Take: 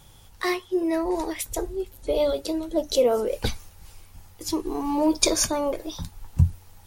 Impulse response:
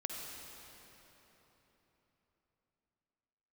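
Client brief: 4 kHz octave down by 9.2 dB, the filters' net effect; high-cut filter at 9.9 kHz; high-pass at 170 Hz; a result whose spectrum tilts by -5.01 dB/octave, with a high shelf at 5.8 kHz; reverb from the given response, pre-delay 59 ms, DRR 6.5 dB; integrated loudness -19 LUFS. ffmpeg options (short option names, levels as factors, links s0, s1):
-filter_complex "[0:a]highpass=170,lowpass=9900,equalizer=f=4000:t=o:g=-8.5,highshelf=f=5800:g=-7,asplit=2[s0][s1];[1:a]atrim=start_sample=2205,adelay=59[s2];[s1][s2]afir=irnorm=-1:irlink=0,volume=0.422[s3];[s0][s3]amix=inputs=2:normalize=0,volume=2.37"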